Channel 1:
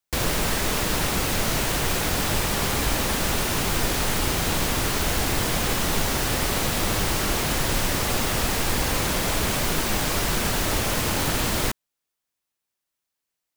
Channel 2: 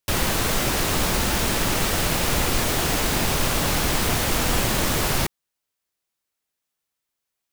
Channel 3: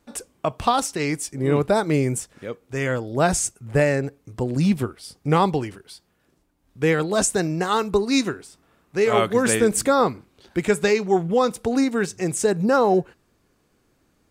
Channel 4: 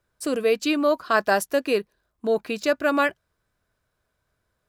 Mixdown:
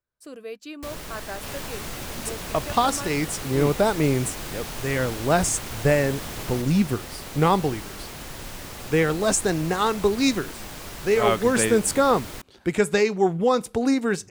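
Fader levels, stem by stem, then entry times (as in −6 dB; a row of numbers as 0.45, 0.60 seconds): −13.5, −14.5, −1.0, −15.5 decibels; 0.70, 1.35, 2.10, 0.00 seconds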